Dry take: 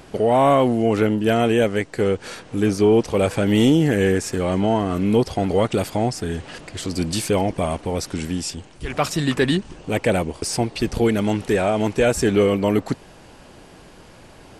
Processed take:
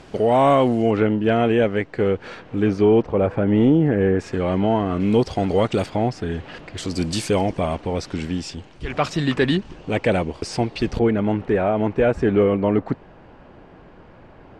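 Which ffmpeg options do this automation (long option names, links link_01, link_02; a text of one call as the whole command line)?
ffmpeg -i in.wav -af "asetnsamples=nb_out_samples=441:pad=0,asendcmd='0.91 lowpass f 2800;3.02 lowpass f 1400;4.19 lowpass f 3100;5 lowpass f 6200;5.86 lowpass f 3400;6.78 lowpass f 7600;7.58 lowpass f 4500;10.99 lowpass f 1800',lowpass=6800" out.wav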